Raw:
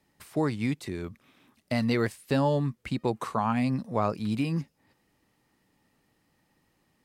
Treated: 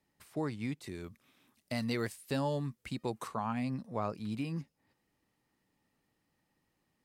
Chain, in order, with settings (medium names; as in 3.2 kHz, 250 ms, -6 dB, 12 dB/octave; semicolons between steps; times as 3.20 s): 0.84–3.28 s: treble shelf 4.2 kHz +8.5 dB; trim -8.5 dB